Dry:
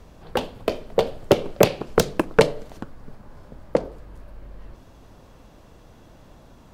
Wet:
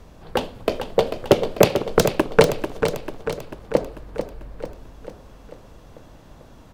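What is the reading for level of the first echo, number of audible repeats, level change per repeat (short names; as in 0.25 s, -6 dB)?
-8.0 dB, 6, -5.0 dB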